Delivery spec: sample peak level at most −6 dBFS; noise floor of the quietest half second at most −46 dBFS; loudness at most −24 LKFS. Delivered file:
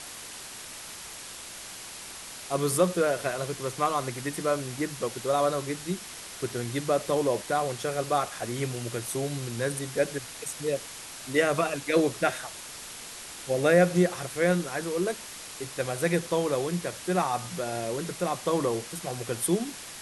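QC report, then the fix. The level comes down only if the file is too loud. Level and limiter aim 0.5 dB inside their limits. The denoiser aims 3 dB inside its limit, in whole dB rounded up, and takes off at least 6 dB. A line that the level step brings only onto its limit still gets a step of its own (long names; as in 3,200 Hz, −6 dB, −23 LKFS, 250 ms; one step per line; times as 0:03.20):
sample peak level −9.0 dBFS: in spec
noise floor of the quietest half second −42 dBFS: out of spec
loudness −29.0 LKFS: in spec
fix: broadband denoise 7 dB, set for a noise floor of −42 dBFS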